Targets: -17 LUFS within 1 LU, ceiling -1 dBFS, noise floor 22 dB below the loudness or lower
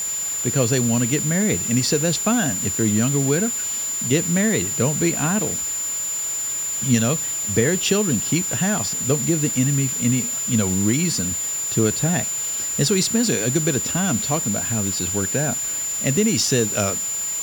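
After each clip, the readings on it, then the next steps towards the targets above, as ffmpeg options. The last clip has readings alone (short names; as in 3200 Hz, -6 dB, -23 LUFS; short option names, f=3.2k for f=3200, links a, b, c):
steady tone 7100 Hz; tone level -23 dBFS; noise floor -26 dBFS; noise floor target -42 dBFS; loudness -20.0 LUFS; peak -4.0 dBFS; loudness target -17.0 LUFS
-> -af "bandreject=f=7.1k:w=30"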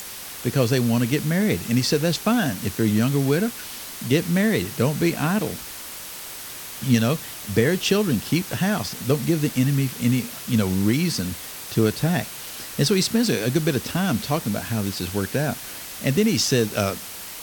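steady tone none; noise floor -36 dBFS; noise floor target -45 dBFS
-> -af "afftdn=nr=9:nf=-36"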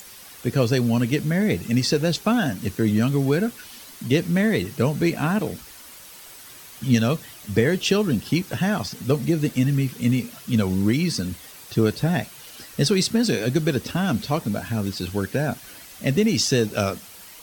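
noise floor -44 dBFS; noise floor target -45 dBFS
-> -af "afftdn=nr=6:nf=-44"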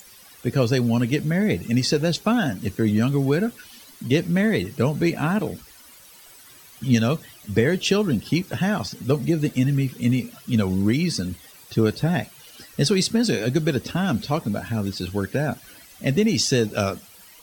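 noise floor -48 dBFS; loudness -23.0 LUFS; peak -4.5 dBFS; loudness target -17.0 LUFS
-> -af "volume=6dB,alimiter=limit=-1dB:level=0:latency=1"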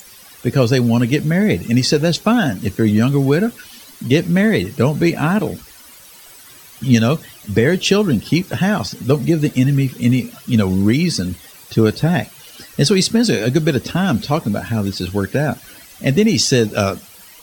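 loudness -17.0 LUFS; peak -1.0 dBFS; noise floor -42 dBFS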